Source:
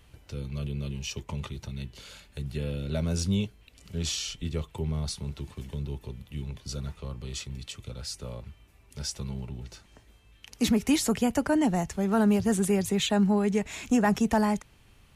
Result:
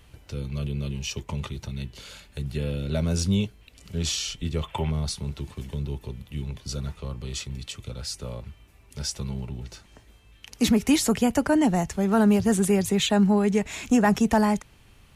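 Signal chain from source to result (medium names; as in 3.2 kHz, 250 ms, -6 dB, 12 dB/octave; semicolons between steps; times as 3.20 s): time-frequency box 4.63–4.91 s, 530–3600 Hz +11 dB; trim +3.5 dB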